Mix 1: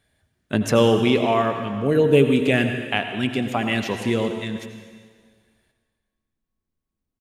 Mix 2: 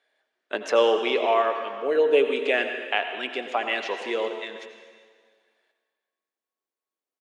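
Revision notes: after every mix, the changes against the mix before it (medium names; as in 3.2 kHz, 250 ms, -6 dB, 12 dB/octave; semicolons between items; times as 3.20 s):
speech: add distance through air 120 m; master: add high-pass 420 Hz 24 dB/octave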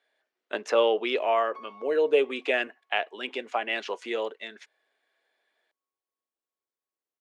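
background -3.0 dB; reverb: off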